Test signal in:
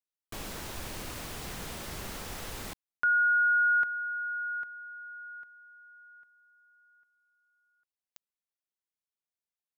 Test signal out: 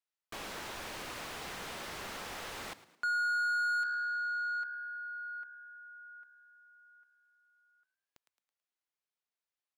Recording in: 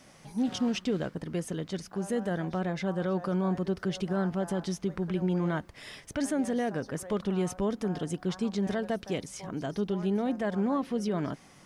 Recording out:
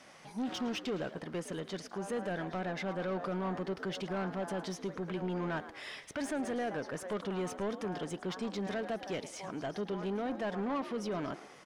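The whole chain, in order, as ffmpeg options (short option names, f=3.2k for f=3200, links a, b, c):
-filter_complex "[0:a]asplit=5[a][b][c][d][e];[b]adelay=109,afreqshift=70,volume=-18dB[f];[c]adelay=218,afreqshift=140,volume=-25.3dB[g];[d]adelay=327,afreqshift=210,volume=-32.7dB[h];[e]adelay=436,afreqshift=280,volume=-40dB[i];[a][f][g][h][i]amix=inputs=5:normalize=0,asplit=2[j][k];[k]highpass=f=720:p=1,volume=18dB,asoftclip=type=tanh:threshold=-18.5dB[l];[j][l]amix=inputs=2:normalize=0,lowpass=f=3k:p=1,volume=-6dB,volume=-8.5dB"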